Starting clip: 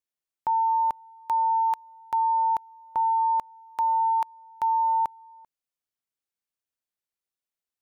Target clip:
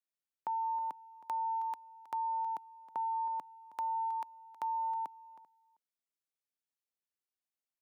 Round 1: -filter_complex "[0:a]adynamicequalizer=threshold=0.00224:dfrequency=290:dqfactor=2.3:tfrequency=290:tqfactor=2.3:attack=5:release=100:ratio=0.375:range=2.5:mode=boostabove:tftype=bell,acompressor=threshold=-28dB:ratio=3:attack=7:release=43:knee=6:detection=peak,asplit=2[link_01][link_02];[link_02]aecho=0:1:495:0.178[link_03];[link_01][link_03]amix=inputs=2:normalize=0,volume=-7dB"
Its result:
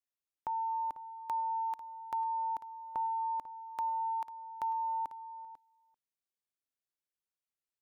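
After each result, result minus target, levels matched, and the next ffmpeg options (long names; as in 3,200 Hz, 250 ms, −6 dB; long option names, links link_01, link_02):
echo 177 ms late; 125 Hz band +5.5 dB
-filter_complex "[0:a]adynamicequalizer=threshold=0.00224:dfrequency=290:dqfactor=2.3:tfrequency=290:tqfactor=2.3:attack=5:release=100:ratio=0.375:range=2.5:mode=boostabove:tftype=bell,acompressor=threshold=-28dB:ratio=3:attack=7:release=43:knee=6:detection=peak,asplit=2[link_01][link_02];[link_02]aecho=0:1:318:0.178[link_03];[link_01][link_03]amix=inputs=2:normalize=0,volume=-7dB"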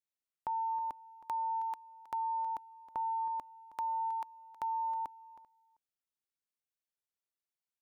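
125 Hz band +6.0 dB
-filter_complex "[0:a]adynamicequalizer=threshold=0.00224:dfrequency=290:dqfactor=2.3:tfrequency=290:tqfactor=2.3:attack=5:release=100:ratio=0.375:range=2.5:mode=boostabove:tftype=bell,highpass=frequency=150:width=0.5412,highpass=frequency=150:width=1.3066,acompressor=threshold=-28dB:ratio=3:attack=7:release=43:knee=6:detection=peak,asplit=2[link_01][link_02];[link_02]aecho=0:1:318:0.178[link_03];[link_01][link_03]amix=inputs=2:normalize=0,volume=-7dB"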